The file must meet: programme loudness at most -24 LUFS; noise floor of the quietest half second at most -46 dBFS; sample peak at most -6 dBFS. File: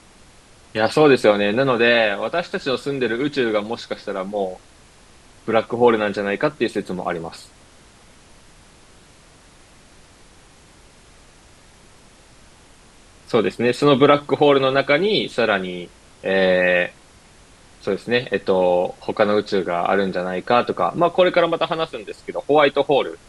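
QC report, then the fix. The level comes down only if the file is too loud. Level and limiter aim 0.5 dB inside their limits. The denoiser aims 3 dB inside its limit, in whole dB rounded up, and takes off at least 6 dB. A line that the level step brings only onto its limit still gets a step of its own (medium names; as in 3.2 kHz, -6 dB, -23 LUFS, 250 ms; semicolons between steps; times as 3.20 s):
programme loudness -19.0 LUFS: fail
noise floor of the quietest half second -49 dBFS: pass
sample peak -2.5 dBFS: fail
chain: trim -5.5 dB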